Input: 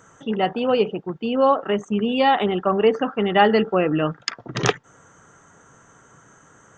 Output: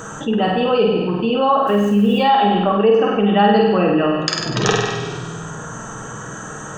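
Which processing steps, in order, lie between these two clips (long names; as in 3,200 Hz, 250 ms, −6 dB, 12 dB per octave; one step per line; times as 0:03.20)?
notch filter 2,100 Hz, Q 5.2
0:01.67–0:02.18: bit-depth reduction 8 bits, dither none
flutter between parallel walls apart 8.4 metres, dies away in 0.71 s
convolution reverb RT60 1.1 s, pre-delay 5 ms, DRR 4.5 dB
envelope flattener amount 50%
level −3.5 dB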